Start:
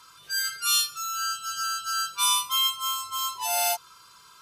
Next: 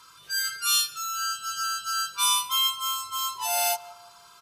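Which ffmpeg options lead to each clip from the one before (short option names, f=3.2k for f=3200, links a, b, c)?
-filter_complex "[0:a]asplit=2[a][b];[b]adelay=167,lowpass=f=1.3k:p=1,volume=-16dB,asplit=2[c][d];[d]adelay=167,lowpass=f=1.3k:p=1,volume=0.52,asplit=2[e][f];[f]adelay=167,lowpass=f=1.3k:p=1,volume=0.52,asplit=2[g][h];[h]adelay=167,lowpass=f=1.3k:p=1,volume=0.52,asplit=2[i][j];[j]adelay=167,lowpass=f=1.3k:p=1,volume=0.52[k];[a][c][e][g][i][k]amix=inputs=6:normalize=0"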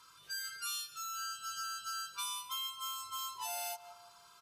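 -af "acompressor=threshold=-29dB:ratio=6,volume=-8dB"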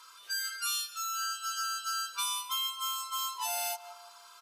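-af "highpass=560,volume=6.5dB"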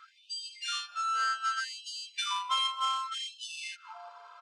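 -af "adynamicsmooth=sensitivity=3.5:basefreq=1.6k,aresample=22050,aresample=44100,afftfilt=real='re*gte(b*sr/1024,400*pow(2700/400,0.5+0.5*sin(2*PI*0.65*pts/sr)))':imag='im*gte(b*sr/1024,400*pow(2700/400,0.5+0.5*sin(2*PI*0.65*pts/sr)))':win_size=1024:overlap=0.75,volume=8dB"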